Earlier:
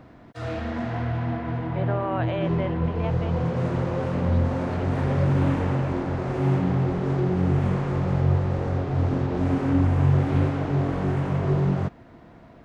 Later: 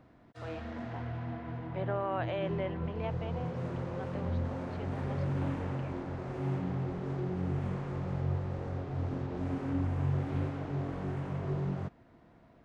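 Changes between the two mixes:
speech -5.5 dB; background -11.5 dB

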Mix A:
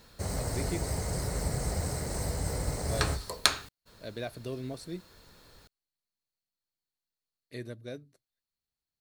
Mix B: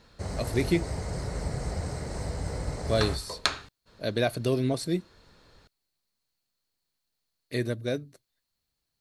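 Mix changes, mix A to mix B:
speech +11.5 dB; background: add distance through air 75 m

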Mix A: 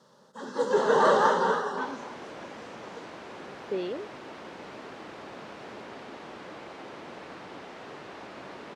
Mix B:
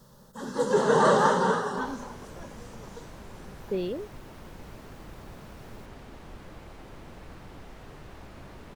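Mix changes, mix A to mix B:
second sound -7.0 dB; master: remove band-pass 290–5400 Hz

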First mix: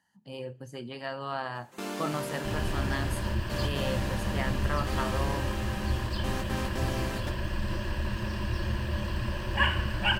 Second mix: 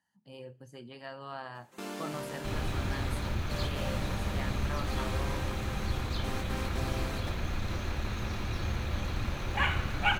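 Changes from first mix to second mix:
speech -7.5 dB; first sound -4.0 dB; second sound: remove rippled EQ curve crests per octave 1.3, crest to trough 13 dB

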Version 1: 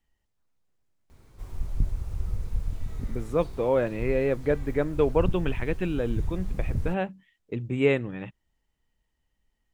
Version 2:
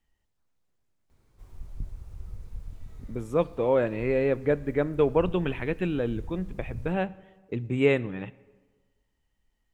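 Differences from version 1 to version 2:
speech: send on; background -10.0 dB

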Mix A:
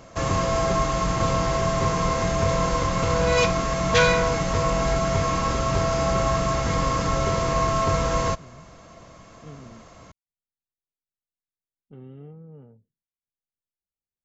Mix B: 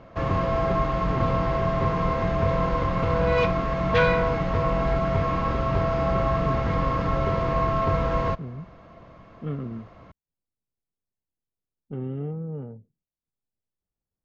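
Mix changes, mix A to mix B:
speech +12.0 dB; master: add distance through air 350 m

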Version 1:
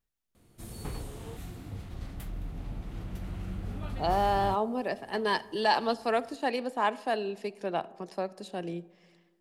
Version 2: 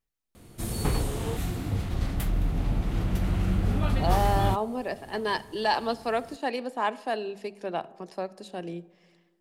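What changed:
speech: add hum notches 50/100/150/200 Hz; background +11.5 dB

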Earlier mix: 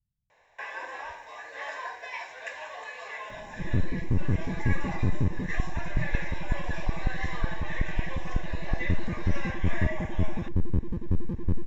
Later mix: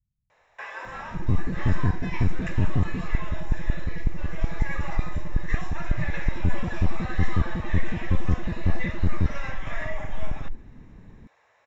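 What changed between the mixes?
first sound: remove Butterworth band-stop 1.3 kHz, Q 5.6; second sound: entry -2.45 s; master: add bass shelf 200 Hz +4 dB

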